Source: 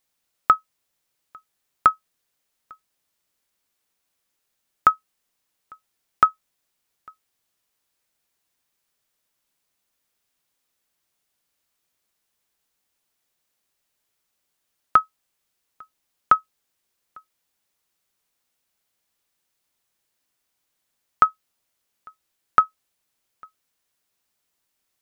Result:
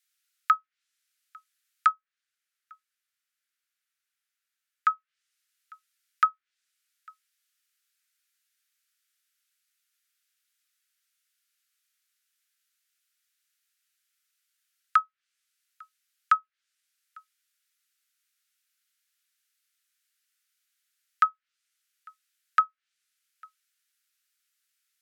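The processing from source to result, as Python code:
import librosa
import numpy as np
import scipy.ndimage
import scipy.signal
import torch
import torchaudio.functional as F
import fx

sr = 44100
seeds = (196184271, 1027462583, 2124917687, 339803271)

y = fx.env_lowpass_down(x, sr, base_hz=1700.0, full_db=-21.5)
y = scipy.signal.sosfilt(scipy.signal.butter(12, 1300.0, 'highpass', fs=sr, output='sos'), y)
y = fx.high_shelf(y, sr, hz=2300.0, db=-9.0, at=(1.91, 4.9))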